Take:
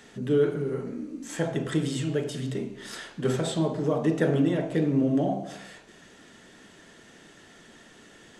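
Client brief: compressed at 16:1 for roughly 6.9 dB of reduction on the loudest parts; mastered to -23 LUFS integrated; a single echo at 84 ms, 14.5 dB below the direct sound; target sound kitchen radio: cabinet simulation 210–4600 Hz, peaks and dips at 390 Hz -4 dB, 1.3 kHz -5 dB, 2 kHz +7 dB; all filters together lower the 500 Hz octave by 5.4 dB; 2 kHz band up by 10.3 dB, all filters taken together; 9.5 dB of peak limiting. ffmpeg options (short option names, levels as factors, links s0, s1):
-af "equalizer=f=500:t=o:g=-4.5,equalizer=f=2000:t=o:g=8.5,acompressor=threshold=0.0501:ratio=16,alimiter=level_in=1.26:limit=0.0631:level=0:latency=1,volume=0.794,highpass=210,equalizer=f=390:t=q:w=4:g=-4,equalizer=f=1300:t=q:w=4:g=-5,equalizer=f=2000:t=q:w=4:g=7,lowpass=f=4600:w=0.5412,lowpass=f=4600:w=1.3066,aecho=1:1:84:0.188,volume=5.31"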